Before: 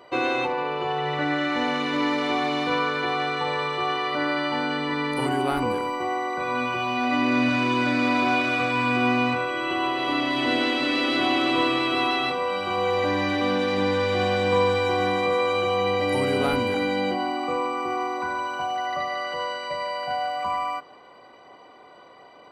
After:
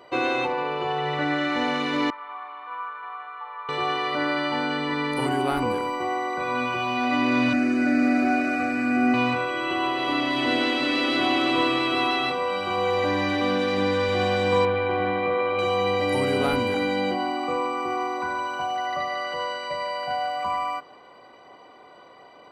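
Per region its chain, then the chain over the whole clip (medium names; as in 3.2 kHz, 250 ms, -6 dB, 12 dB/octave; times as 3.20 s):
2.10–3.69 s: ladder band-pass 1.2 kHz, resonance 60% + distance through air 210 m
7.53–9.14 s: bass shelf 300 Hz +7.5 dB + static phaser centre 670 Hz, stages 8
13.45–14.09 s: high-pass 58 Hz + band-stop 890 Hz, Q 16
14.65–15.59 s: low-pass 3 kHz 24 dB/octave + band-stop 950 Hz, Q 20 + AM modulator 110 Hz, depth 15%
whole clip: none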